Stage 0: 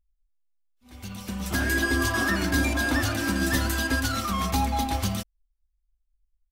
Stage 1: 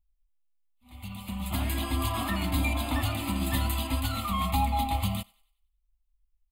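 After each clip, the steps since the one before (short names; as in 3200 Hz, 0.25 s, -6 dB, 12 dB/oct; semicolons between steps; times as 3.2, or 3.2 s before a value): fixed phaser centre 1600 Hz, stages 6; thinning echo 95 ms, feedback 42%, high-pass 680 Hz, level -23.5 dB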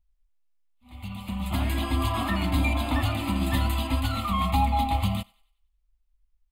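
high shelf 6200 Hz -10 dB; gain +3.5 dB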